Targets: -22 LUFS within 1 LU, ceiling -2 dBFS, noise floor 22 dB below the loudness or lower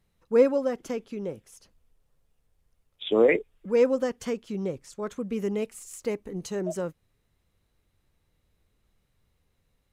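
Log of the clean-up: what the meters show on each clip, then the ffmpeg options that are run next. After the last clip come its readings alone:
loudness -27.5 LUFS; peak level -9.0 dBFS; loudness target -22.0 LUFS
-> -af "volume=1.88"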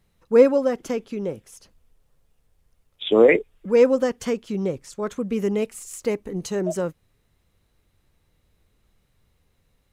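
loudness -22.0 LUFS; peak level -3.5 dBFS; noise floor -68 dBFS

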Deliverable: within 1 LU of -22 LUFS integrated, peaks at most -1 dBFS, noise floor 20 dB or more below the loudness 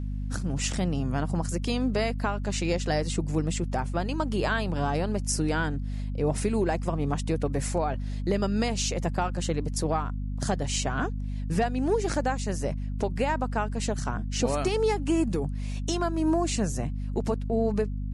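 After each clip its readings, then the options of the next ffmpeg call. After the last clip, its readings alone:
hum 50 Hz; highest harmonic 250 Hz; hum level -29 dBFS; loudness -28.5 LUFS; peak level -13.5 dBFS; loudness target -22.0 LUFS
-> -af "bandreject=f=50:t=h:w=4,bandreject=f=100:t=h:w=4,bandreject=f=150:t=h:w=4,bandreject=f=200:t=h:w=4,bandreject=f=250:t=h:w=4"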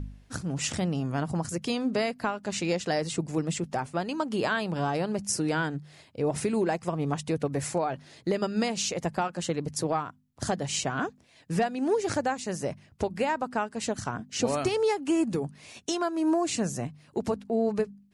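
hum not found; loudness -29.5 LUFS; peak level -13.5 dBFS; loudness target -22.0 LUFS
-> -af "volume=2.37"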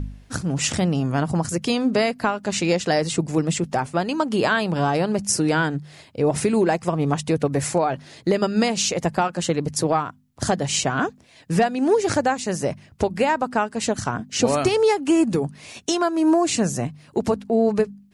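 loudness -22.0 LUFS; peak level -6.0 dBFS; noise floor -52 dBFS

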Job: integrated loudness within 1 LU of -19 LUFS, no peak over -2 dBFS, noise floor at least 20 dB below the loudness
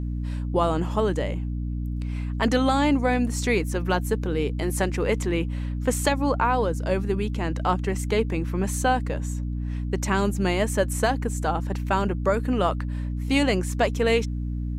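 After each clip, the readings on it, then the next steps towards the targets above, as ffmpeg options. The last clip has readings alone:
hum 60 Hz; highest harmonic 300 Hz; hum level -26 dBFS; loudness -25.0 LUFS; peak level -9.0 dBFS; loudness target -19.0 LUFS
-> -af "bandreject=f=60:t=h:w=4,bandreject=f=120:t=h:w=4,bandreject=f=180:t=h:w=4,bandreject=f=240:t=h:w=4,bandreject=f=300:t=h:w=4"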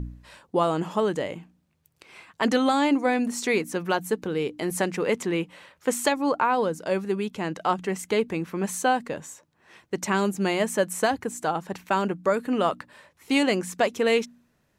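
hum not found; loudness -25.5 LUFS; peak level -10.0 dBFS; loudness target -19.0 LUFS
-> -af "volume=2.11"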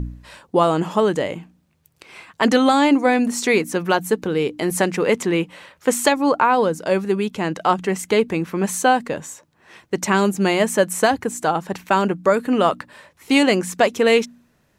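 loudness -19.5 LUFS; peak level -3.5 dBFS; noise floor -63 dBFS

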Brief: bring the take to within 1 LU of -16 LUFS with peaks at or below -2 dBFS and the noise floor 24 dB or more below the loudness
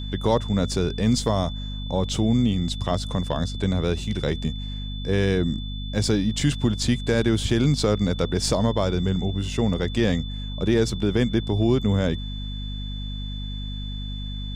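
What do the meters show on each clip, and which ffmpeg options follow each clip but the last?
hum 50 Hz; highest harmonic 250 Hz; hum level -29 dBFS; steady tone 3.5 kHz; tone level -38 dBFS; loudness -24.5 LUFS; peak level -7.5 dBFS; loudness target -16.0 LUFS
-> -af "bandreject=f=50:t=h:w=6,bandreject=f=100:t=h:w=6,bandreject=f=150:t=h:w=6,bandreject=f=200:t=h:w=6,bandreject=f=250:t=h:w=6"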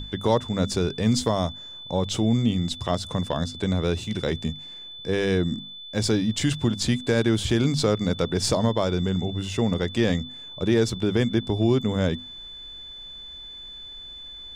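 hum not found; steady tone 3.5 kHz; tone level -38 dBFS
-> -af "bandreject=f=3500:w=30"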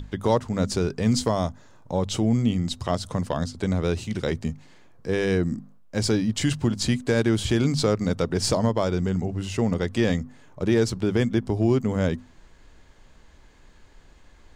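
steady tone not found; loudness -25.0 LUFS; peak level -8.0 dBFS; loudness target -16.0 LUFS
-> -af "volume=2.82,alimiter=limit=0.794:level=0:latency=1"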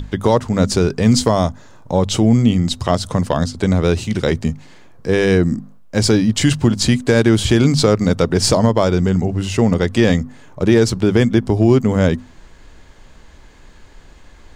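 loudness -16.0 LUFS; peak level -2.0 dBFS; noise floor -44 dBFS

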